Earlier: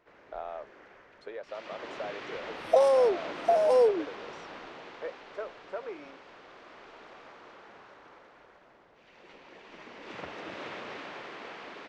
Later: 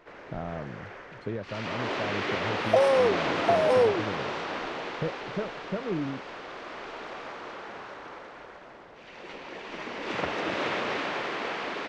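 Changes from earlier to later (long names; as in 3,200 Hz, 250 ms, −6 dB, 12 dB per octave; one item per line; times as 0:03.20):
speech: remove high-pass filter 500 Hz 24 dB per octave
first sound +11.0 dB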